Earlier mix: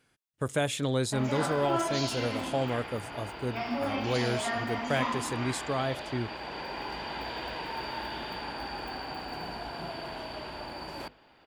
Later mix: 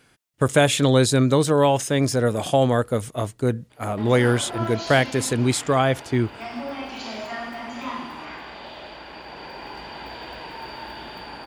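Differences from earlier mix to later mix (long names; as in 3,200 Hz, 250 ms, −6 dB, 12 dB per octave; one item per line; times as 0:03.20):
speech +11.5 dB
background: entry +2.85 s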